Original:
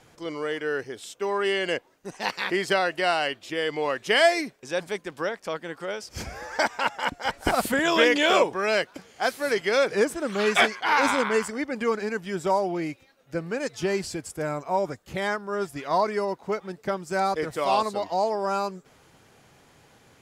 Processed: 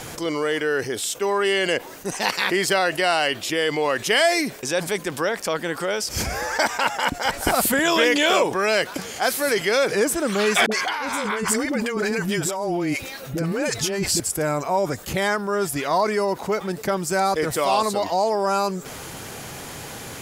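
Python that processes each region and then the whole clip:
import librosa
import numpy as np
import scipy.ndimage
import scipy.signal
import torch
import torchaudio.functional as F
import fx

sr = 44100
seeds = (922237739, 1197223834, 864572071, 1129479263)

y = fx.chain(x, sr, fx.over_compress(threshold_db=-32.0, ratio=-1.0),
    fx.dispersion(late='highs', ms=56.0, hz=460.0), at=(10.66, 14.2))
y = fx.high_shelf(y, sr, hz=7700.0, db=12.0)
y = fx.env_flatten(y, sr, amount_pct=50)
y = y * librosa.db_to_amplitude(-1.0)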